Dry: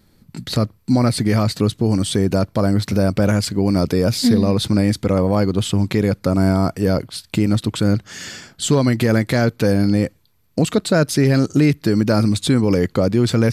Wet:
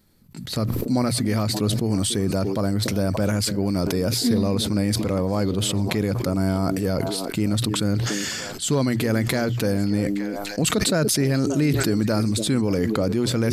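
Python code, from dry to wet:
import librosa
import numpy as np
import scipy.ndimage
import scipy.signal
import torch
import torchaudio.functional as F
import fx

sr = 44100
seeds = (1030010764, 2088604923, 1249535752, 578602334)

p1 = fx.high_shelf(x, sr, hz=7600.0, db=7.0)
p2 = fx.hum_notches(p1, sr, base_hz=60, count=2)
p3 = p2 + fx.echo_stepped(p2, sr, ms=289, hz=320.0, octaves=1.4, feedback_pct=70, wet_db=-10.5, dry=0)
p4 = fx.sustainer(p3, sr, db_per_s=21.0)
y = p4 * librosa.db_to_amplitude(-6.5)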